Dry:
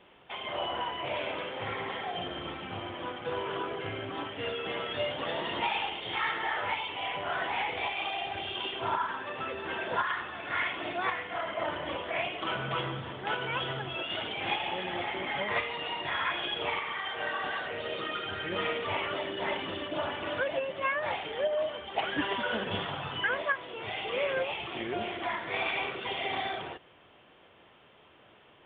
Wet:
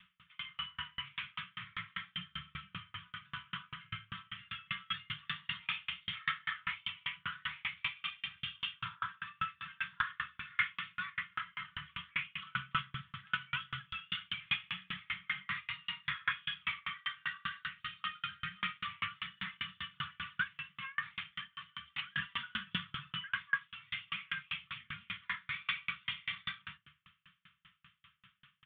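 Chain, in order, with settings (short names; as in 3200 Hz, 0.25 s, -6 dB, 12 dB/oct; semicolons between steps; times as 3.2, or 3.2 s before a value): Chebyshev band-stop 190–1200 Hz, order 4; low shelf 63 Hz -7 dB; doubler 41 ms -14 dB; on a send at -7 dB: reverb RT60 0.50 s, pre-delay 6 ms; on the sum: dB-ramp tremolo decaying 5.1 Hz, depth 38 dB; gain +4 dB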